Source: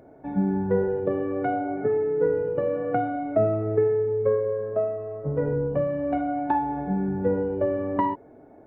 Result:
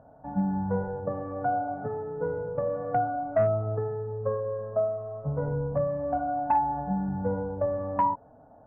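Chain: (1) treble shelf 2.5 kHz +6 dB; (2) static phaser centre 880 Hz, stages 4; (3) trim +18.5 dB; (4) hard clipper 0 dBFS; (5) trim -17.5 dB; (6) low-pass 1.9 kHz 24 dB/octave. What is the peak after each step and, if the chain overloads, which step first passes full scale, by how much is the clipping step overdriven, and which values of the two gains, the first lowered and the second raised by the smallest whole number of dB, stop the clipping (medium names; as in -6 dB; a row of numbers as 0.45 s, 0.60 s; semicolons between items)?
-9.5 dBFS, -13.5 dBFS, +5.0 dBFS, 0.0 dBFS, -17.5 dBFS, -16.5 dBFS; step 3, 5.0 dB; step 3 +13.5 dB, step 5 -12.5 dB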